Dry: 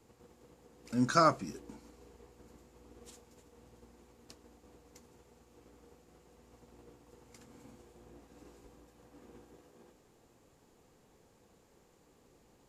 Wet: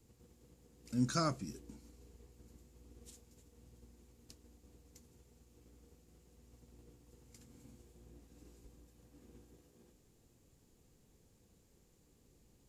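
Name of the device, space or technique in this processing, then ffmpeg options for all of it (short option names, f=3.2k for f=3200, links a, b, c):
smiley-face EQ: -af "lowshelf=f=160:g=8,equalizer=f=950:t=o:w=2.3:g=-9,highshelf=f=5.7k:g=5,volume=-4dB"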